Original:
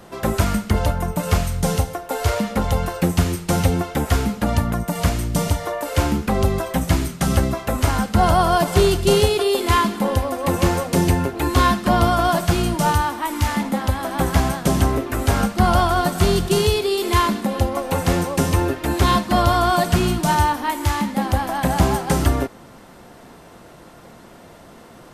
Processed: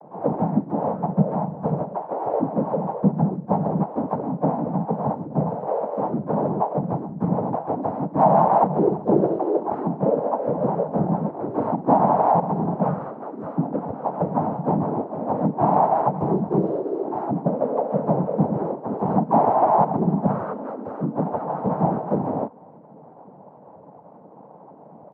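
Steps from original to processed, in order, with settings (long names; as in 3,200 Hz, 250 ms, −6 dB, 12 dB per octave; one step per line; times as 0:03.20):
elliptic band-pass filter 170–700 Hz, stop band 50 dB
comb filter 1.5 ms, depth 58%
cochlear-implant simulation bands 12
pitch-shifted copies added +3 semitones −7 dB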